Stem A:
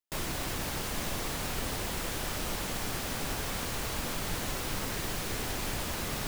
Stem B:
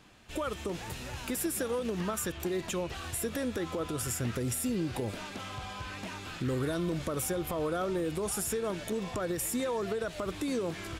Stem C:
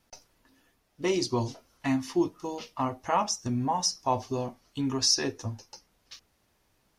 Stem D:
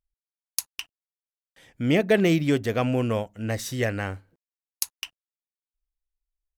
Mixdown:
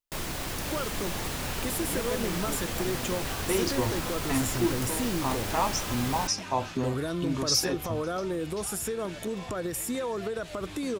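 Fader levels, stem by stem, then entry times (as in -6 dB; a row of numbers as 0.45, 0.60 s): +0.5, +0.5, -1.5, -17.0 dB; 0.00, 0.35, 2.45, 0.00 s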